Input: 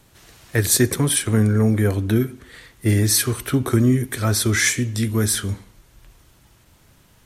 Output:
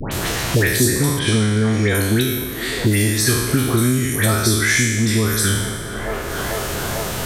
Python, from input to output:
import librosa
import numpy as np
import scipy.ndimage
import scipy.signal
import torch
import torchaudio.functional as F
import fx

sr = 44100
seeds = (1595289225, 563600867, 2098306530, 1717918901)

p1 = fx.spec_trails(x, sr, decay_s=0.87)
p2 = fx.dispersion(p1, sr, late='highs', ms=116.0, hz=1400.0)
p3 = fx.air_absorb(p2, sr, metres=120.0, at=(1.19, 1.95))
p4 = p3 + fx.echo_banded(p3, sr, ms=449, feedback_pct=85, hz=760.0, wet_db=-19.0, dry=0)
y = fx.band_squash(p4, sr, depth_pct=100)